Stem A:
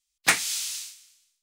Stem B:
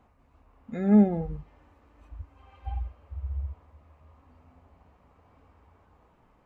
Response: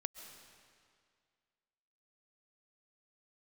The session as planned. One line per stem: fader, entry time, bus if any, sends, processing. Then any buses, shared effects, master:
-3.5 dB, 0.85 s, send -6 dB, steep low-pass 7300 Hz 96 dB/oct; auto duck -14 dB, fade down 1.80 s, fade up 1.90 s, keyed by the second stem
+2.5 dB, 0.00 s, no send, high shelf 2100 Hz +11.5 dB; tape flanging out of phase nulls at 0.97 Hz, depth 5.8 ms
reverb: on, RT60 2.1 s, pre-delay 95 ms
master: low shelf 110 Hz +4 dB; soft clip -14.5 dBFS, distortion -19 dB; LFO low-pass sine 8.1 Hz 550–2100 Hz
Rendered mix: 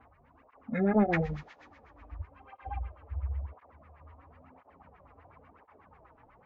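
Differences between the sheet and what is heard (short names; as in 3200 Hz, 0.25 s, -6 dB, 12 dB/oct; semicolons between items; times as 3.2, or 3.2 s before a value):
stem A -3.5 dB -> -13.0 dB; master: missing low shelf 110 Hz +4 dB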